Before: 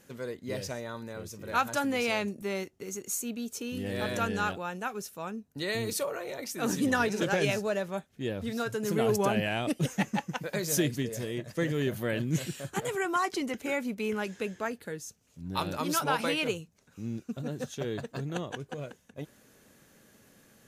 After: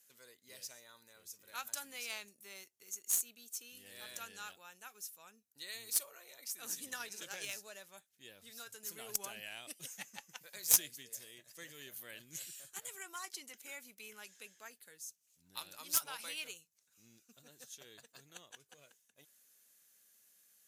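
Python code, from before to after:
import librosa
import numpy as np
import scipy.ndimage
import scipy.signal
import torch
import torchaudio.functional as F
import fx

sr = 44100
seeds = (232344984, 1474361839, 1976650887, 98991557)

y = scipy.signal.lfilter([1.0, -0.97], [1.0], x)
y = fx.cheby_harmonics(y, sr, harmonics=(3,), levels_db=(-11,), full_scale_db=-15.0)
y = F.gain(torch.from_numpy(y), 12.5).numpy()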